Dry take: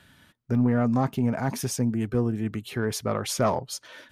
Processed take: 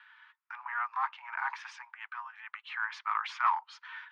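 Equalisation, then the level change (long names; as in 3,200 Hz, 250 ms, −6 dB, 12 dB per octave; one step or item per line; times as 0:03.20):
Butterworth high-pass 900 Hz 72 dB per octave
flat-topped band-pass 1,200 Hz, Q 0.62
high-frequency loss of the air 120 metres
+4.5 dB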